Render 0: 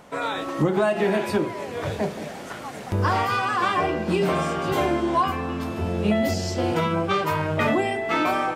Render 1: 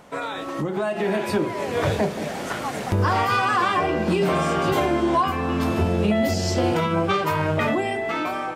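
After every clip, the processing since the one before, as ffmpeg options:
-af "alimiter=limit=0.112:level=0:latency=1:release=395,dynaudnorm=f=300:g=7:m=2.24"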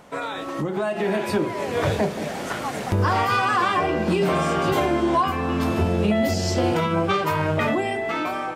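-af anull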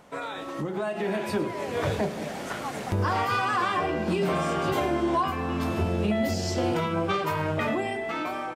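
-af "aecho=1:1:106:0.168,volume=0.562"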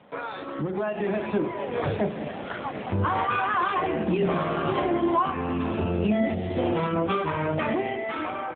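-af "volume=1.33" -ar 8000 -c:a libopencore_amrnb -b:a 7400

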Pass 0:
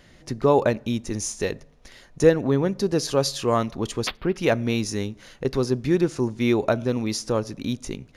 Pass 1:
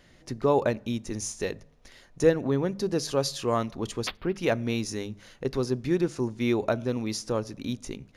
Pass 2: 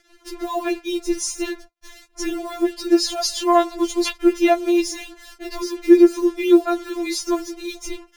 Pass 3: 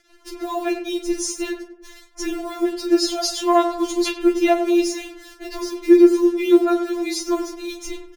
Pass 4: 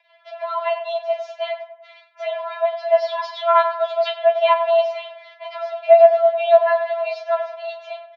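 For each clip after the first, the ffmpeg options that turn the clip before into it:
-af "bandreject=f=50:t=h:w=6,bandreject=f=100:t=h:w=6,bandreject=f=150:t=h:w=6,bandreject=f=200:t=h:w=6,volume=0.596"
-filter_complex "[0:a]asplit=2[s0][s1];[s1]alimiter=limit=0.0944:level=0:latency=1:release=34,volume=0.891[s2];[s0][s2]amix=inputs=2:normalize=0,acrusher=bits=6:mix=0:aa=0.5,afftfilt=real='re*4*eq(mod(b,16),0)':imag='im*4*eq(mod(b,16),0)':win_size=2048:overlap=0.75,volume=1.88"
-filter_complex "[0:a]asplit=2[s0][s1];[s1]adelay=37,volume=0.251[s2];[s0][s2]amix=inputs=2:normalize=0,asplit=2[s3][s4];[s4]adelay=98,lowpass=f=1400:p=1,volume=0.376,asplit=2[s5][s6];[s6]adelay=98,lowpass=f=1400:p=1,volume=0.5,asplit=2[s7][s8];[s8]adelay=98,lowpass=f=1400:p=1,volume=0.5,asplit=2[s9][s10];[s10]adelay=98,lowpass=f=1400:p=1,volume=0.5,asplit=2[s11][s12];[s12]adelay=98,lowpass=f=1400:p=1,volume=0.5,asplit=2[s13][s14];[s14]adelay=98,lowpass=f=1400:p=1,volume=0.5[s15];[s5][s7][s9][s11][s13][s15]amix=inputs=6:normalize=0[s16];[s3][s16]amix=inputs=2:normalize=0,volume=0.891"
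-af "highpass=f=220:t=q:w=0.5412,highpass=f=220:t=q:w=1.307,lowpass=f=3400:t=q:w=0.5176,lowpass=f=3400:t=q:w=0.7071,lowpass=f=3400:t=q:w=1.932,afreqshift=320,volume=1.12"

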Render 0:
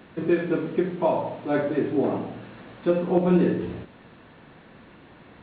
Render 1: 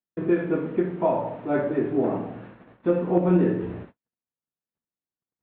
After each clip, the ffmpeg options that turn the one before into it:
-af "agate=range=0.00224:threshold=0.00794:ratio=16:detection=peak,lowpass=2000"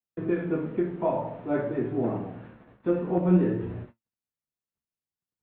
-filter_complex "[0:a]acrossover=split=140|740[s0][s1][s2];[s0]acontrast=73[s3];[s3][s1][s2]amix=inputs=3:normalize=0,flanger=delay=8.1:depth=6.5:regen=63:speed=0.53:shape=sinusoidal"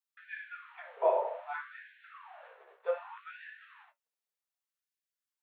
-af "afftfilt=real='re*gte(b*sr/1024,360*pow(1500/360,0.5+0.5*sin(2*PI*0.65*pts/sr)))':imag='im*gte(b*sr/1024,360*pow(1500/360,0.5+0.5*sin(2*PI*0.65*pts/sr)))':win_size=1024:overlap=0.75"

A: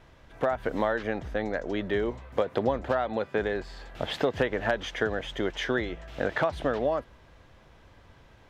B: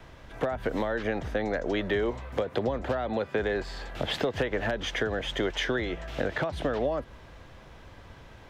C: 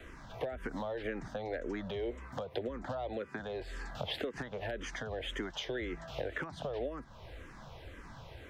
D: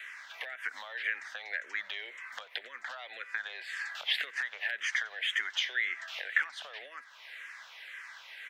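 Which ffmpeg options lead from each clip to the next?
-filter_complex "[0:a]acrossover=split=93|420[s0][s1][s2];[s0]acompressor=threshold=0.00631:ratio=4[s3];[s1]acompressor=threshold=0.0126:ratio=4[s4];[s2]acompressor=threshold=0.0224:ratio=4[s5];[s3][s4][s5]amix=inputs=3:normalize=0,acrossover=split=620|1700[s6][s7][s8];[s7]alimiter=level_in=3.98:limit=0.0631:level=0:latency=1,volume=0.251[s9];[s6][s9][s8]amix=inputs=3:normalize=0,volume=2"
-filter_complex "[0:a]acompressor=threshold=0.00794:ratio=2,asplit=2[s0][s1];[s1]afreqshift=-1.9[s2];[s0][s2]amix=inputs=2:normalize=1,volume=1.33"
-af "highpass=f=1900:t=q:w=2.8,aecho=1:1:90:0.0708,volume=1.88"

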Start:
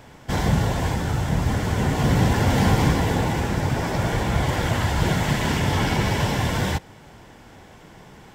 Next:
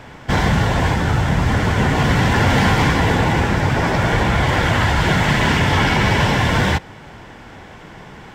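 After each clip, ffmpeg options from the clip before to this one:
-filter_complex "[0:a]lowpass=f=1700:p=1,acrossover=split=1200[s0][s1];[s0]alimiter=limit=0.15:level=0:latency=1[s2];[s1]acontrast=86[s3];[s2][s3]amix=inputs=2:normalize=0,volume=2.24"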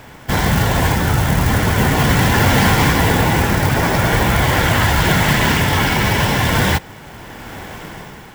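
-af "acrusher=bits=5:mode=log:mix=0:aa=0.000001,highshelf=f=7800:g=10.5,dynaudnorm=f=140:g=7:m=2.51,volume=0.891"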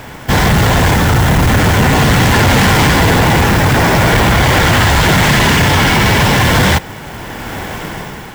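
-af "asoftclip=type=hard:threshold=0.168,volume=2.66"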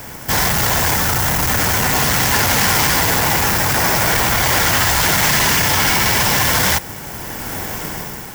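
-filter_complex "[0:a]acrossover=split=620[s0][s1];[s0]alimiter=limit=0.188:level=0:latency=1[s2];[s1]aexciter=amount=2:drive=8.5:freq=4900[s3];[s2][s3]amix=inputs=2:normalize=0,volume=0.596"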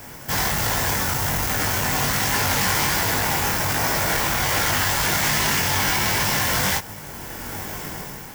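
-af "flanger=delay=19.5:depth=2.4:speed=1.3,volume=0.708"

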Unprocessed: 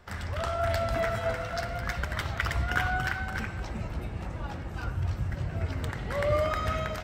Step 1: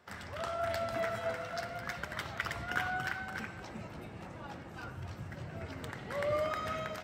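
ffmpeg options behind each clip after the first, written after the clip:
-af "highpass=150,volume=0.531"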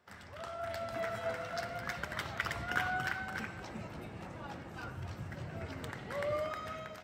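-af "dynaudnorm=f=200:g=11:m=2.24,volume=0.473"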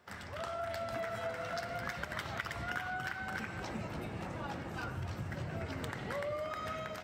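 -af "acompressor=threshold=0.00891:ratio=6,volume=1.88"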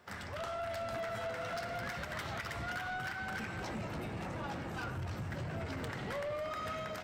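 -af "asoftclip=type=tanh:threshold=0.0141,volume=1.41"

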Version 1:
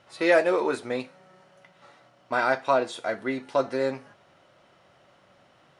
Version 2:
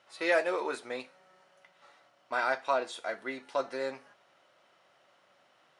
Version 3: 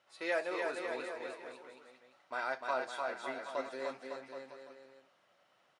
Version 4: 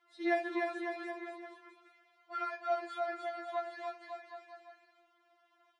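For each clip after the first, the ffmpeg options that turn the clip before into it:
-af "highpass=f=640:p=1,volume=0.631"
-af "aecho=1:1:300|555|771.8|956|1113:0.631|0.398|0.251|0.158|0.1,volume=0.422"
-af "aemphasis=mode=reproduction:type=50fm,afftfilt=real='re*4*eq(mod(b,16),0)':imag='im*4*eq(mod(b,16),0)':win_size=2048:overlap=0.75,volume=1.33"

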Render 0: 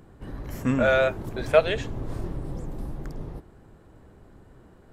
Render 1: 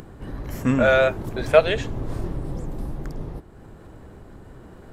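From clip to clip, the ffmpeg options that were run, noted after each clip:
-af "acompressor=mode=upward:threshold=0.0112:ratio=2.5,volume=1.5"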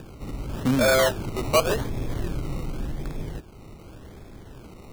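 -filter_complex "[0:a]acrossover=split=260[s0][s1];[s1]acrusher=samples=21:mix=1:aa=0.000001:lfo=1:lforange=12.6:lforate=0.88[s2];[s0][s2]amix=inputs=2:normalize=0,asoftclip=type=tanh:threshold=0.224"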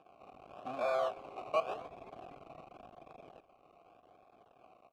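-filter_complex "[0:a]aeval=exprs='max(val(0),0)':c=same,asplit=3[s0][s1][s2];[s0]bandpass=f=730:t=q:w=8,volume=1[s3];[s1]bandpass=f=1090:t=q:w=8,volume=0.501[s4];[s2]bandpass=f=2440:t=q:w=8,volume=0.355[s5];[s3][s4][s5]amix=inputs=3:normalize=0,asplit=5[s6][s7][s8][s9][s10];[s7]adelay=251,afreqshift=-120,volume=0.0708[s11];[s8]adelay=502,afreqshift=-240,volume=0.0417[s12];[s9]adelay=753,afreqshift=-360,volume=0.0245[s13];[s10]adelay=1004,afreqshift=-480,volume=0.0146[s14];[s6][s11][s12][s13][s14]amix=inputs=5:normalize=0,volume=1.19"

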